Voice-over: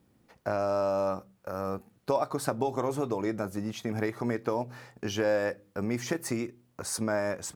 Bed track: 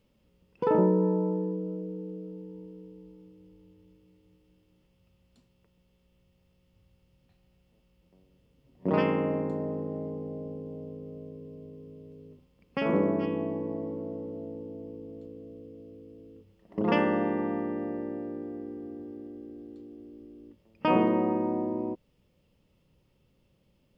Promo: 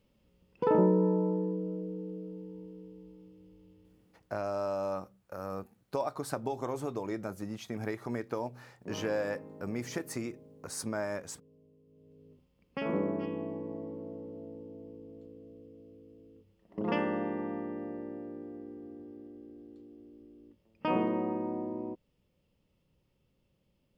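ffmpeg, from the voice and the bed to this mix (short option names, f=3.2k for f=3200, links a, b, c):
-filter_complex "[0:a]adelay=3850,volume=-5.5dB[a];[1:a]volume=10dB,afade=t=out:st=3.76:d=0.67:silence=0.158489,afade=t=in:st=11.86:d=0.55:silence=0.266073[b];[a][b]amix=inputs=2:normalize=0"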